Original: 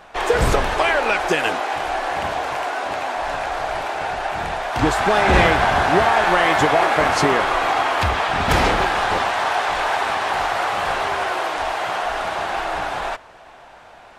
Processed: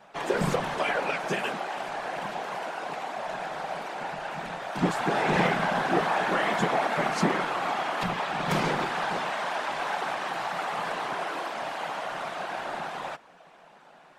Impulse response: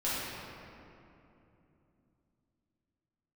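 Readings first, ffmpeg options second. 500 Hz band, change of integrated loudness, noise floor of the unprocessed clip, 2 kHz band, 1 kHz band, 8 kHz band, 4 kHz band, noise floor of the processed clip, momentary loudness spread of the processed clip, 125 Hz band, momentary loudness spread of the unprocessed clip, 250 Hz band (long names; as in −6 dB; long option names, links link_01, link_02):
−9.5 dB, −9.5 dB, −44 dBFS, −10.0 dB, −10.0 dB, −10.0 dB, −10.0 dB, −54 dBFS, 9 LU, −8.0 dB, 9 LU, −5.5 dB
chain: -af "afftfilt=real='hypot(re,im)*cos(2*PI*random(0))':imag='hypot(re,im)*sin(2*PI*random(1))':win_size=512:overlap=0.75,lowshelf=frequency=120:width_type=q:width=3:gain=-10.5,volume=-4dB"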